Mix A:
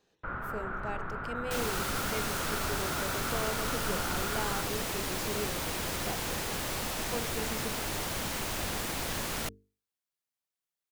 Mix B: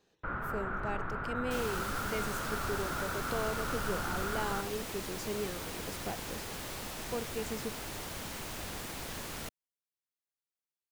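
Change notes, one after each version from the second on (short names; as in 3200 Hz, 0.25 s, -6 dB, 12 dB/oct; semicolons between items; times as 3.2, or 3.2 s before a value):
second sound -7.0 dB; master: remove notches 50/100/150/200/250/300/350/400/450 Hz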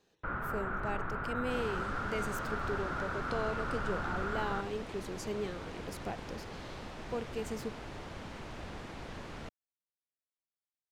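second sound: add tape spacing loss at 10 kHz 23 dB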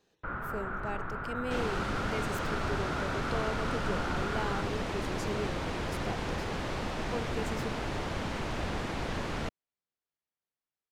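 second sound +10.0 dB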